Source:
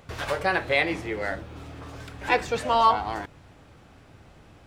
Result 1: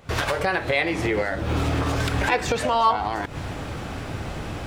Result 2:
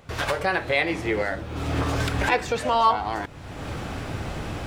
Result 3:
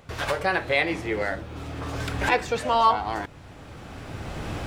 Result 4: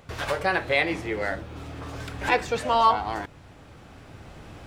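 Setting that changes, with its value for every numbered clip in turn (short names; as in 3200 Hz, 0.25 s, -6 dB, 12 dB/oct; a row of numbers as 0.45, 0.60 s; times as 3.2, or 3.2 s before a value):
recorder AGC, rising by: 90, 34, 13, 5.2 dB/s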